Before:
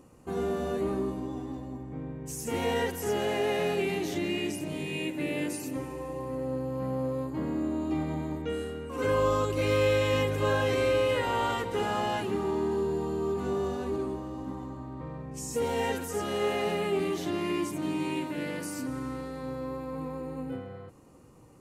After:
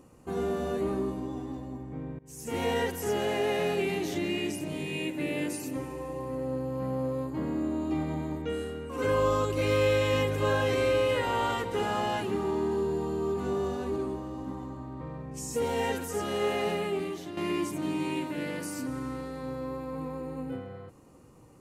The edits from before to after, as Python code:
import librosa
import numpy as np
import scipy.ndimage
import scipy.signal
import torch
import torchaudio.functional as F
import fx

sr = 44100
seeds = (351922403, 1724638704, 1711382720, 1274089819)

y = fx.edit(x, sr, fx.fade_in_from(start_s=2.19, length_s=0.42, floor_db=-23.0),
    fx.fade_out_to(start_s=16.69, length_s=0.68, floor_db=-10.5), tone=tone)